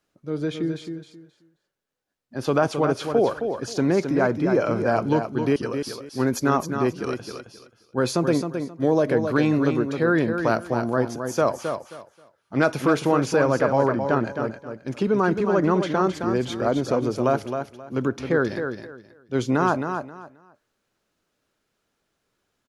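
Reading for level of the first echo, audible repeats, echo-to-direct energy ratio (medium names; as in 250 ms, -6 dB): -7.0 dB, 3, -7.0 dB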